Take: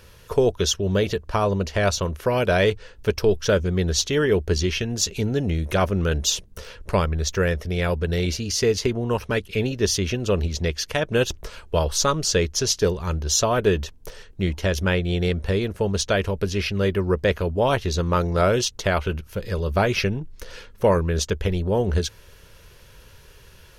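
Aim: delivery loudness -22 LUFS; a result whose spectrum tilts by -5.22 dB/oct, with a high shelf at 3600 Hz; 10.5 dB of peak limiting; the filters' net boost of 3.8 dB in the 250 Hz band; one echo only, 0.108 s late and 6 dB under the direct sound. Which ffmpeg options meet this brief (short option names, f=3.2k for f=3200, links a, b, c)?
-af "equalizer=f=250:t=o:g=5.5,highshelf=f=3.6k:g=-5,alimiter=limit=-16dB:level=0:latency=1,aecho=1:1:108:0.501,volume=3dB"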